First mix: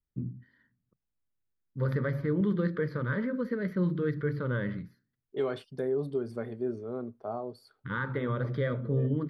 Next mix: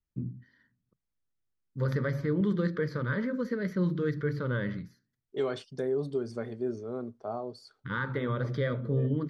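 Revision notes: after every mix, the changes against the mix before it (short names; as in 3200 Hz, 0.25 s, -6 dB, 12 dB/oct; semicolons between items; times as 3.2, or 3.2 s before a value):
second voice: add LPF 8000 Hz 12 dB/oct; master: add bell 6500 Hz +14.5 dB 0.95 oct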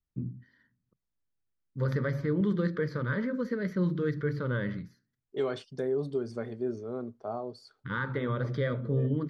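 master: add high shelf 6600 Hz -4 dB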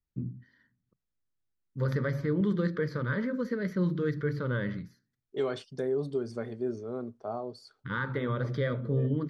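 master: add high shelf 6600 Hz +4 dB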